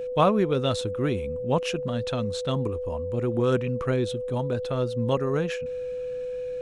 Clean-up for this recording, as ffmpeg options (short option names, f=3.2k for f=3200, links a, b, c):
-af "bandreject=f=500:w=30"